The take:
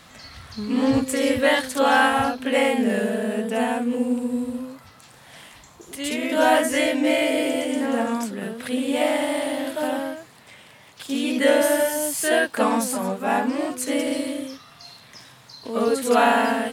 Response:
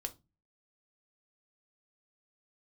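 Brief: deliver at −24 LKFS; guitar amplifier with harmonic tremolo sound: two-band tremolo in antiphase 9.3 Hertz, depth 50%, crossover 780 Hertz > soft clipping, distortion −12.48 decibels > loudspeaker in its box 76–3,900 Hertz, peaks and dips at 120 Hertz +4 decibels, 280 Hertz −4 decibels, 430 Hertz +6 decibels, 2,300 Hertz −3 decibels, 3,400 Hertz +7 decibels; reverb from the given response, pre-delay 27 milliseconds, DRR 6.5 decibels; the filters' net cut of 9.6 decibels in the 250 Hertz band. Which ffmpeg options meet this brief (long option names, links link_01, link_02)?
-filter_complex "[0:a]equalizer=frequency=250:width_type=o:gain=-8.5,asplit=2[link_01][link_02];[1:a]atrim=start_sample=2205,adelay=27[link_03];[link_02][link_03]afir=irnorm=-1:irlink=0,volume=-5dB[link_04];[link_01][link_04]amix=inputs=2:normalize=0,acrossover=split=780[link_05][link_06];[link_05]aeval=exprs='val(0)*(1-0.5/2+0.5/2*cos(2*PI*9.3*n/s))':channel_layout=same[link_07];[link_06]aeval=exprs='val(0)*(1-0.5/2-0.5/2*cos(2*PI*9.3*n/s))':channel_layout=same[link_08];[link_07][link_08]amix=inputs=2:normalize=0,asoftclip=threshold=-18.5dB,highpass=76,equalizer=frequency=120:width_type=q:width=4:gain=4,equalizer=frequency=280:width_type=q:width=4:gain=-4,equalizer=frequency=430:width_type=q:width=4:gain=6,equalizer=frequency=2300:width_type=q:width=4:gain=-3,equalizer=frequency=3400:width_type=q:width=4:gain=7,lowpass=frequency=3900:width=0.5412,lowpass=frequency=3900:width=1.3066,volume=3dB"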